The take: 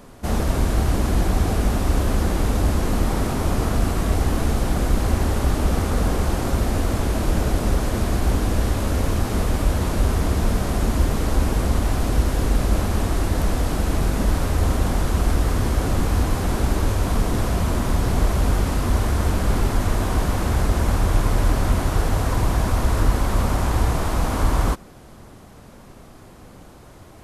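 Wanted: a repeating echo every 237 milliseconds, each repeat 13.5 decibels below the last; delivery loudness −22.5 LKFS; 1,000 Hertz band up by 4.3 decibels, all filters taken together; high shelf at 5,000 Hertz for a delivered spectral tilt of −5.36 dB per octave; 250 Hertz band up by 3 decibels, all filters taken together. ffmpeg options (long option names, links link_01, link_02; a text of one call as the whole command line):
ffmpeg -i in.wav -af "equalizer=frequency=250:width_type=o:gain=3.5,equalizer=frequency=1000:width_type=o:gain=5,highshelf=frequency=5000:gain=7,aecho=1:1:237|474:0.211|0.0444,volume=-2dB" out.wav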